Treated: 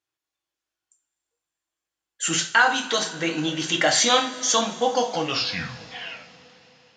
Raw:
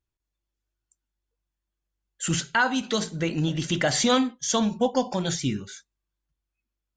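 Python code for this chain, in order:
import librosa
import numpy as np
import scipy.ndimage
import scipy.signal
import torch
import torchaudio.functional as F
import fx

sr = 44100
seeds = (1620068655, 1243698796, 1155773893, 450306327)

y = fx.tape_stop_end(x, sr, length_s=2.04)
y = fx.weighting(y, sr, curve='A')
y = fx.rev_double_slope(y, sr, seeds[0], early_s=0.32, late_s=4.3, knee_db=-22, drr_db=2.5)
y = F.gain(torch.from_numpy(y), 3.5).numpy()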